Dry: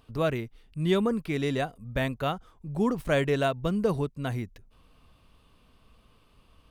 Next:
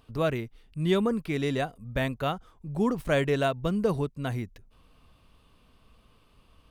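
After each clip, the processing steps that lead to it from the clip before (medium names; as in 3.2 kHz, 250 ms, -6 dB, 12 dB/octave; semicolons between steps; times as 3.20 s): no audible change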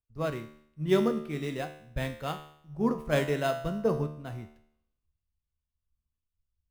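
feedback comb 75 Hz, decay 1.2 s, harmonics all, mix 80%; in parallel at -9 dB: sample-rate reducer 5.7 kHz, jitter 0%; on the sum: three bands expanded up and down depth 100%; trim +4 dB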